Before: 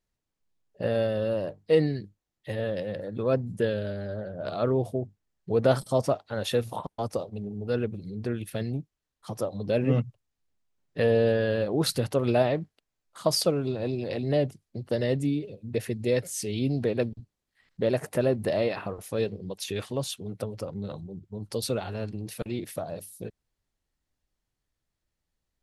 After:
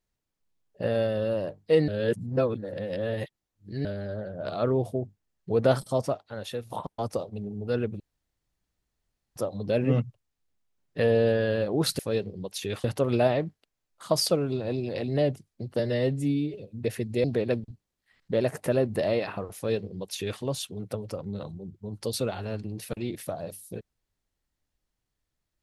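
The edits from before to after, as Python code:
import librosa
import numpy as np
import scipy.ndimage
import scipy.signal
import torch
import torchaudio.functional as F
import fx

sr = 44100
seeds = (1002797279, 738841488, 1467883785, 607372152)

y = fx.edit(x, sr, fx.reverse_span(start_s=1.88, length_s=1.97),
    fx.fade_out_to(start_s=5.69, length_s=1.01, floor_db=-11.0),
    fx.room_tone_fill(start_s=8.0, length_s=1.36),
    fx.stretch_span(start_s=14.94, length_s=0.5, factor=1.5),
    fx.cut(start_s=16.14, length_s=0.59),
    fx.duplicate(start_s=19.05, length_s=0.85, to_s=11.99), tone=tone)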